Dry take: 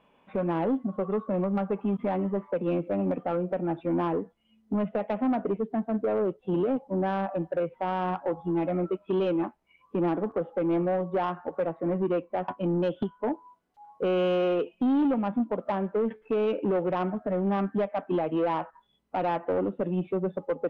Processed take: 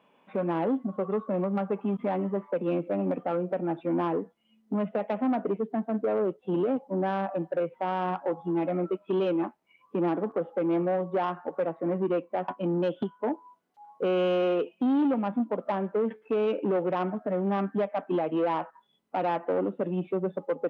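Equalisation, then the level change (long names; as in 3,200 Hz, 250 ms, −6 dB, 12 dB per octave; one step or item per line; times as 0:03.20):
high-pass filter 160 Hz 12 dB per octave
0.0 dB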